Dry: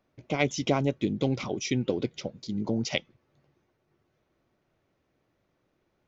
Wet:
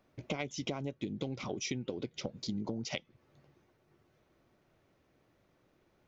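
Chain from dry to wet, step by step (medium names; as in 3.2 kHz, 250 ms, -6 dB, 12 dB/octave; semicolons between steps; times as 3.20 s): compression 20:1, threshold -36 dBFS, peak gain reduction 18 dB; trim +3 dB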